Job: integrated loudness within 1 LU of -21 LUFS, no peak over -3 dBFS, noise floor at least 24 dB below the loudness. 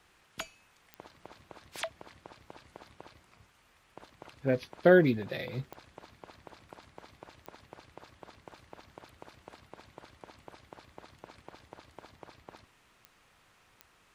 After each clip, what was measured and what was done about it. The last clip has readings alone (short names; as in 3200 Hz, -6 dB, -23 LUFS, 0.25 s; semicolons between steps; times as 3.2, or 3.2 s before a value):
clicks 5; loudness -29.5 LUFS; peak -9.0 dBFS; loudness target -21.0 LUFS
-> de-click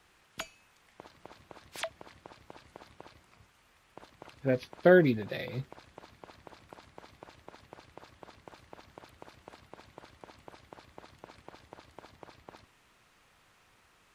clicks 0; loudness -29.5 LUFS; peak -9.0 dBFS; loudness target -21.0 LUFS
-> gain +8.5 dB; limiter -3 dBFS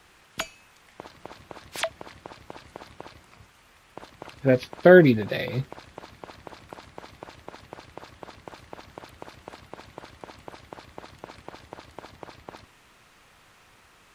loudness -21.5 LUFS; peak -3.0 dBFS; noise floor -57 dBFS